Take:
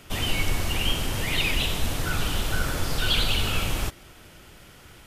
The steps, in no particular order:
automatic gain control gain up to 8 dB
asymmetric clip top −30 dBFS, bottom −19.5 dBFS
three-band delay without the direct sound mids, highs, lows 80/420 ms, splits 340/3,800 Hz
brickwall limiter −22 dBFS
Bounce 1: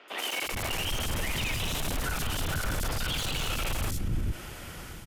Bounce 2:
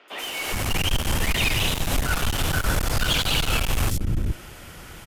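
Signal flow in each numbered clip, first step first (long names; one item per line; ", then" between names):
asymmetric clip, then automatic gain control, then three-band delay without the direct sound, then brickwall limiter
three-band delay without the direct sound, then asymmetric clip, then brickwall limiter, then automatic gain control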